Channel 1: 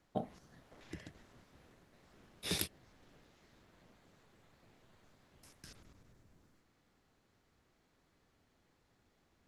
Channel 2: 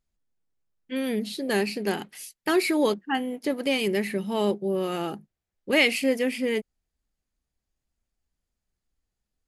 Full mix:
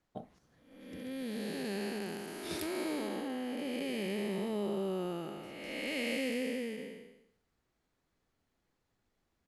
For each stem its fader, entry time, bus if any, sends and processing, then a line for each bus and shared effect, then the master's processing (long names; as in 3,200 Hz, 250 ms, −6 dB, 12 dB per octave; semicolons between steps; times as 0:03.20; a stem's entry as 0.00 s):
−7.0 dB, 0.00 s, no send, no processing
−5.5 dB, 0.15 s, no send, spectrum smeared in time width 542 ms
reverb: not used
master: no processing